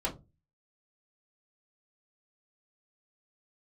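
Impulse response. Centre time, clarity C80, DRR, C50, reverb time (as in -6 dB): 14 ms, 21.5 dB, -6.0 dB, 15.0 dB, 0.25 s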